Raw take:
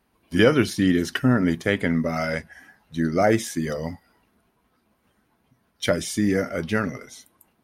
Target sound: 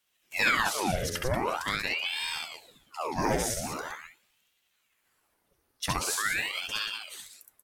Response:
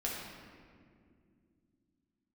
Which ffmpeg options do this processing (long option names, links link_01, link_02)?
-af "bass=frequency=250:gain=-3,treble=frequency=4000:gain=11,aecho=1:1:67.06|183.7:0.794|0.447,aeval=exprs='val(0)*sin(2*PI*1600*n/s+1600*0.9/0.44*sin(2*PI*0.44*n/s))':channel_layout=same,volume=-7.5dB"